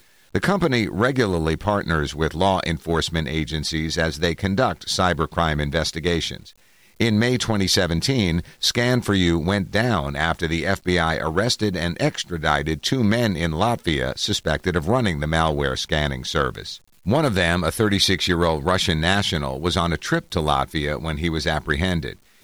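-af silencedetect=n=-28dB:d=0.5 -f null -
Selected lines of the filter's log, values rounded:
silence_start: 6.37
silence_end: 7.01 | silence_duration: 0.64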